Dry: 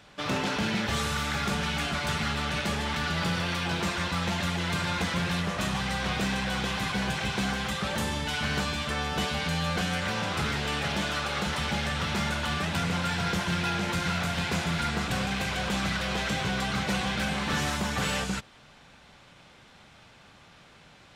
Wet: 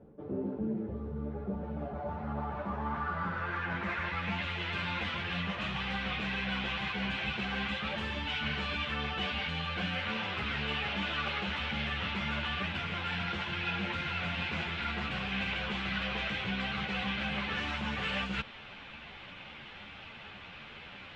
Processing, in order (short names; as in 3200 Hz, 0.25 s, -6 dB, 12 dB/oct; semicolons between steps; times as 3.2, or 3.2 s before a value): reverse; compressor 5:1, threshold -39 dBFS, peak gain reduction 13 dB; reverse; low-pass sweep 400 Hz -> 2800 Hz, 1.14–4.54; ensemble effect; gain +6.5 dB